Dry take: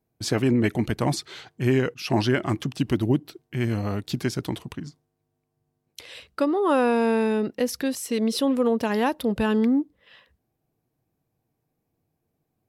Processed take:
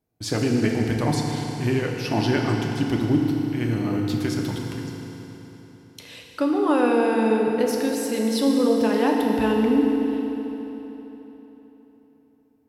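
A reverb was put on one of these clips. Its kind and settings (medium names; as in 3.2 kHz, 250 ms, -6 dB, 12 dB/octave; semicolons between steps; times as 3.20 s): FDN reverb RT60 3.8 s, high-frequency decay 0.85×, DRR 0 dB; trim -2 dB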